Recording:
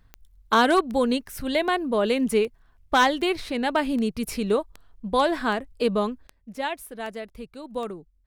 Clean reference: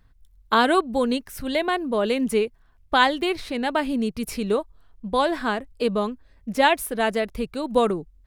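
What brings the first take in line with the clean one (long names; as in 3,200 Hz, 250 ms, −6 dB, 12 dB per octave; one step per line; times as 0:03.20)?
clipped peaks rebuilt −11.5 dBFS
click removal
level correction +11 dB, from 0:06.27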